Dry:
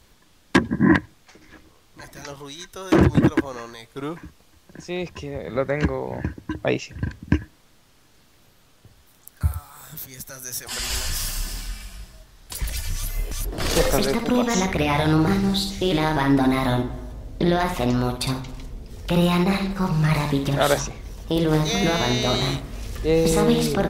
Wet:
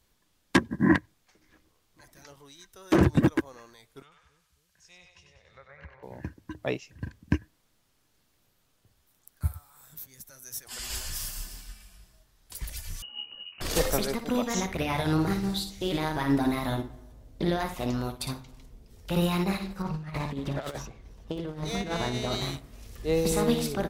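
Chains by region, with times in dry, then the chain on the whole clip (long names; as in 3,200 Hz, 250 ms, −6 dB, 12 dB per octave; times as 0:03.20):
0:04.02–0:06.03: treble cut that deepens with the level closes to 1,900 Hz, closed at −21.5 dBFS + guitar amp tone stack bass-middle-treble 10-0-10 + echo with a time of its own for lows and highs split 470 Hz, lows 269 ms, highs 95 ms, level −5 dB
0:13.02–0:13.61: mu-law and A-law mismatch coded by A + voice inversion scrambler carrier 2,900 Hz + parametric band 2,100 Hz −11 dB
0:19.82–0:22.32: phase distortion by the signal itself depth 0.097 ms + low-pass filter 3,000 Hz 6 dB per octave + compressor whose output falls as the input rises −22 dBFS, ratio −0.5
whole clip: high-shelf EQ 8,500 Hz +7 dB; expander for the loud parts 1.5 to 1, over −33 dBFS; level −4 dB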